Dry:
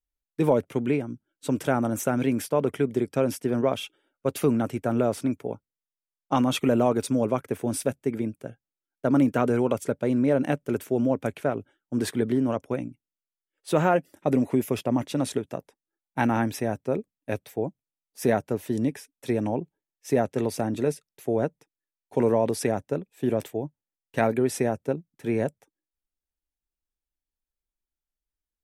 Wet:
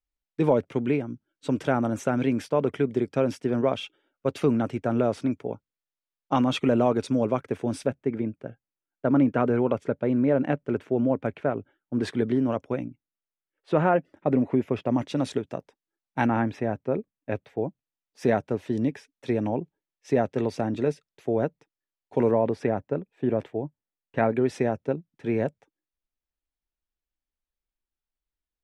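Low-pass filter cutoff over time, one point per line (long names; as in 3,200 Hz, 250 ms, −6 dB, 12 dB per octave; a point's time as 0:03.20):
4,900 Hz
from 0:07.86 2,500 Hz
from 0:12.03 4,400 Hz
from 0:12.85 2,300 Hz
from 0:14.86 5,400 Hz
from 0:16.26 2,500 Hz
from 0:17.59 4,300 Hz
from 0:22.31 2,200 Hz
from 0:24.35 3,900 Hz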